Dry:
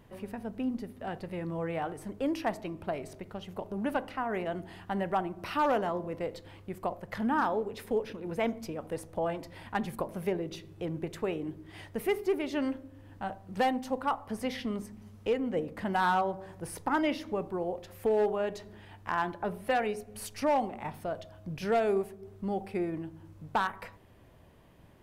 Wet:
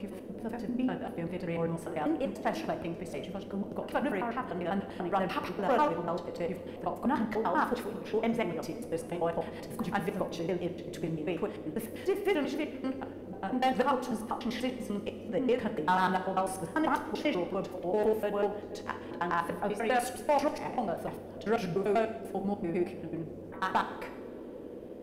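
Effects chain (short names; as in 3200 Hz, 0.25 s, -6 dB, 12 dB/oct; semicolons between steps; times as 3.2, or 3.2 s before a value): slices in reverse order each 98 ms, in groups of 3; band noise 210–540 Hz -45 dBFS; two-slope reverb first 0.81 s, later 3.1 s, from -18 dB, DRR 7 dB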